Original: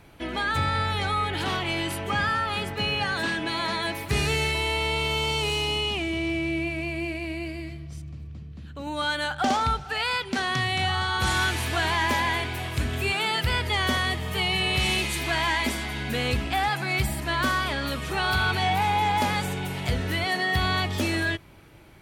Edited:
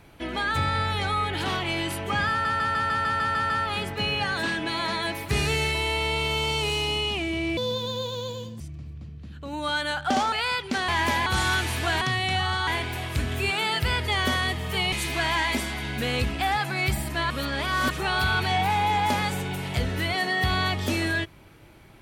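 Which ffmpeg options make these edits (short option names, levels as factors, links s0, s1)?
-filter_complex "[0:a]asplit=19[s0][s1][s2][s3][s4][s5][s6][s7][s8][s9][s10][s11][s12][s13][s14][s15][s16][s17][s18];[s0]atrim=end=2.452[s19];[s1]atrim=start=2.298:end=2.452[s20];[s2]atrim=start=2.298:end=2.452[s21];[s3]atrim=start=2.298:end=2.452[s22];[s4]atrim=start=2.298:end=2.452[s23];[s5]atrim=start=2.298:end=2.452[s24];[s6]atrim=start=2.298:end=2.452[s25];[s7]atrim=start=2.298:end=2.452[s26];[s8]atrim=start=2.298:end=6.374[s27];[s9]atrim=start=6.37:end=7.94,asetpts=PTS-STARTPTS,asetrate=67032,aresample=44100[s28];[s10]atrim=start=7.936:end=9.662[s29];[s11]atrim=start=9.938:end=10.502[s30];[s12]atrim=start=11.908:end=12.292[s31];[s13]atrim=start=11.158:end=11.912[s32];[s14]atrim=start=10.498:end=11.162[s33];[s15]atrim=start=12.288:end=14.542[s34];[s16]atrim=start=15.038:end=17.422[s35];[s17]atrim=start=17.418:end=18.022,asetpts=PTS-STARTPTS,areverse[s36];[s18]atrim=start=18.018[s37];[s19][s20]acrossfade=d=0.004:c1=hsin:c2=hsin[s38];[s38][s21]acrossfade=d=0.004:c1=hsin:c2=hsin[s39];[s39][s22]acrossfade=d=0.004:c1=hsin:c2=hsin[s40];[s40][s23]acrossfade=d=0.004:c1=hsin:c2=hsin[s41];[s41][s24]acrossfade=d=0.004:c1=hsin:c2=hsin[s42];[s42][s25]acrossfade=d=0.004:c1=hsin:c2=hsin[s43];[s43][s26]acrossfade=d=0.004:c1=hsin:c2=hsin[s44];[s44][s27]acrossfade=d=0.004:c1=hsin:c2=hsin[s45];[s45][s28]acrossfade=d=0.004:c1=hsin:c2=hsin[s46];[s46][s29]acrossfade=d=0.004:c1=hsin:c2=hsin[s47];[s47][s30]acrossfade=d=0.004:c1=hsin:c2=hsin[s48];[s48][s31]acrossfade=d=0.004:c1=hsin:c2=hsin[s49];[s49][s32]acrossfade=d=0.004:c1=hsin:c2=hsin[s50];[s50][s33]acrossfade=d=0.004:c1=hsin:c2=hsin[s51];[s51][s34]acrossfade=d=0.004:c1=hsin:c2=hsin[s52];[s52][s35]acrossfade=d=0.004:c1=hsin:c2=hsin[s53];[s53][s36]acrossfade=d=0.004:c1=hsin:c2=hsin[s54];[s54][s37]acrossfade=d=0.004:c1=hsin:c2=hsin"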